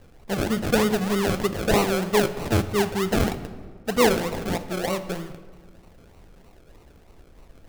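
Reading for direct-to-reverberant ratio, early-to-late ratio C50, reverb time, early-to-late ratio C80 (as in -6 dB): 10.5 dB, 12.5 dB, 1.7 s, 14.0 dB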